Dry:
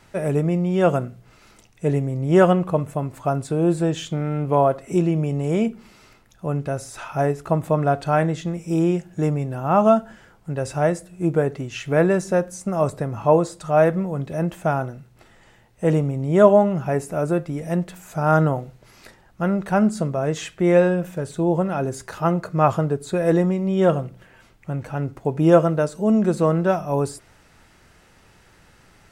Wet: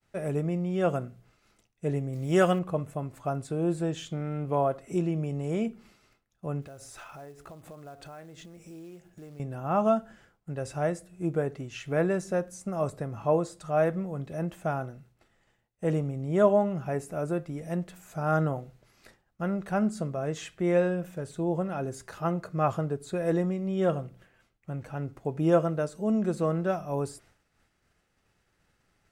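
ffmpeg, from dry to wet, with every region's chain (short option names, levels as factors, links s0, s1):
-filter_complex "[0:a]asettb=1/sr,asplit=3[s0][s1][s2];[s0]atrim=end=2.134[s3];[s1]atrim=start=2.13:end=2.59,asetpts=PTS-STARTPTS,afade=t=in:d=0.004:c=qsin,afade=t=out:st=0.456:d=0.004:c=qsin,highshelf=f=2100:g=10,acrusher=bits=7:mix=0:aa=0.5[s4];[s2]atrim=start=2.586[s5];[s3][s4]acrossfade=d=0.004:c1=hsin:c2=qsin[s6];[s6][s5]acrossfade=d=0.004:c1=qsin:c2=hsin,asettb=1/sr,asplit=3[s7][s8][s9];[s7]atrim=end=6.624[s10];[s8]atrim=start=6.62:end=9.4,asetpts=PTS-STARTPTS,afade=t=in:d=0.004:c=qsin,afade=t=out:st=2.776:d=0.004:c=qsin,acompressor=threshold=0.0251:ratio=10:attack=3.2:release=140:knee=1:detection=peak,equalizer=f=170:t=o:w=0.8:g=-5,acrusher=bits=5:mode=log:mix=0:aa=0.000001[s11];[s9]atrim=start=9.396[s12];[s10][s11]acrossfade=d=0.004:c1=hsin:c2=qsin[s13];[s13][s12]acrossfade=d=0.004:c1=qsin:c2=hsin,agate=range=0.0224:threshold=0.00562:ratio=3:detection=peak,bandreject=f=930:w=14,volume=0.376"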